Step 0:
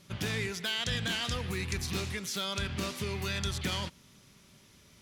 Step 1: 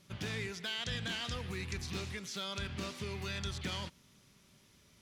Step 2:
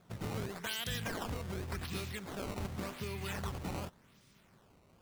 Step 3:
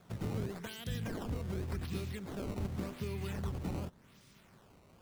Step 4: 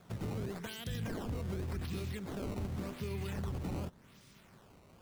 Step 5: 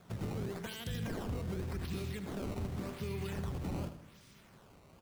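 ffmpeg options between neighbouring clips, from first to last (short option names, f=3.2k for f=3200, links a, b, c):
-filter_complex "[0:a]acrossover=split=7700[a][b];[b]acompressor=threshold=-55dB:ratio=4:attack=1:release=60[c];[a][c]amix=inputs=2:normalize=0,volume=-5.5dB"
-af "acrusher=samples=15:mix=1:aa=0.000001:lfo=1:lforange=24:lforate=0.88"
-filter_complex "[0:a]acrossover=split=480[a][b];[b]acompressor=threshold=-57dB:ratio=2[c];[a][c]amix=inputs=2:normalize=0,volume=3dB"
-af "alimiter=level_in=8dB:limit=-24dB:level=0:latency=1:release=12,volume=-8dB,volume=1.5dB"
-af "aecho=1:1:79|158|237|316|395:0.282|0.138|0.0677|0.0332|0.0162"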